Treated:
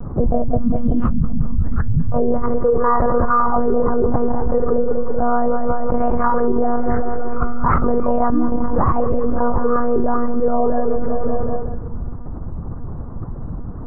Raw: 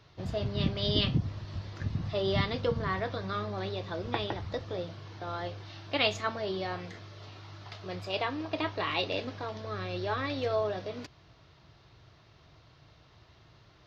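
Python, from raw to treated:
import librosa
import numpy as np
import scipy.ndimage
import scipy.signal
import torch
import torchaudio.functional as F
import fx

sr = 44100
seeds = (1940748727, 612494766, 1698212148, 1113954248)

y = fx.rider(x, sr, range_db=4, speed_s=0.5)
y = fx.noise_reduce_blind(y, sr, reduce_db=22)
y = fx.tilt_eq(y, sr, slope=-2.0)
y = fx.lpc_monotone(y, sr, seeds[0], pitch_hz=240.0, order=10)
y = scipy.signal.sosfilt(scipy.signal.butter(6, 1300.0, 'lowpass', fs=sr, output='sos'), y)
y = fx.low_shelf(y, sr, hz=280.0, db=8.0)
y = fx.echo_feedback(y, sr, ms=191, feedback_pct=51, wet_db=-15.5)
y = fx.env_flatten(y, sr, amount_pct=100)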